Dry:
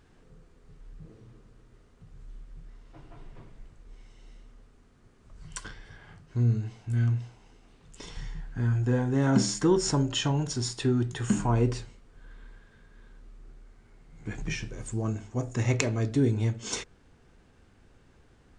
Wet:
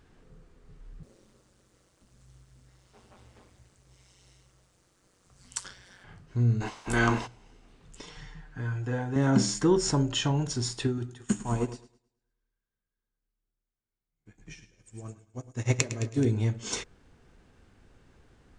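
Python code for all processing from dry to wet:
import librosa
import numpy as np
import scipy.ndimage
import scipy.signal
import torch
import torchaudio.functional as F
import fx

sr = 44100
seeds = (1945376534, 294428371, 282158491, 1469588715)

y = fx.chain(x, sr, fx.bass_treble(bass_db=-10, treble_db=12),
    fx.ring_mod(carrier_hz=93.0), at=(1.03, 6.04))
y = fx.spec_clip(y, sr, under_db=26, at=(6.6, 7.26), fade=0.02)
y = fx.peak_eq(y, sr, hz=1000.0, db=9.5, octaves=0.72, at=(6.6, 7.26), fade=0.02)
y = fx.chain(y, sr, fx.lowpass(hz=1800.0, slope=6),
    fx.tilt_eq(slope=2.5),
    fx.comb(ms=6.6, depth=0.51), at=(8.02, 9.16))
y = fx.chain(y, sr, fx.high_shelf(hz=5000.0, db=8.0),
    fx.echo_feedback(ms=107, feedback_pct=59, wet_db=-7.5),
    fx.upward_expand(threshold_db=-44.0, expansion=2.5), at=(10.87, 16.25))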